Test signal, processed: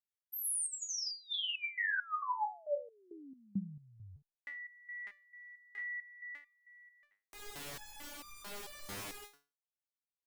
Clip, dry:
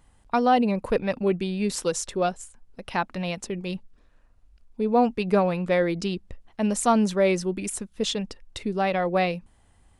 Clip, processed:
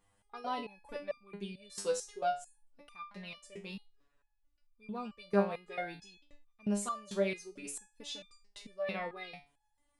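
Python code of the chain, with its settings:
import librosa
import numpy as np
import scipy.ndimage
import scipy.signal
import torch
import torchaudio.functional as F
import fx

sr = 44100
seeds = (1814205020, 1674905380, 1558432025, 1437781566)

y = fx.low_shelf(x, sr, hz=210.0, db=-8.0)
y = fx.resonator_held(y, sr, hz=4.5, low_hz=100.0, high_hz=1200.0)
y = F.gain(torch.from_numpy(y), 1.0).numpy()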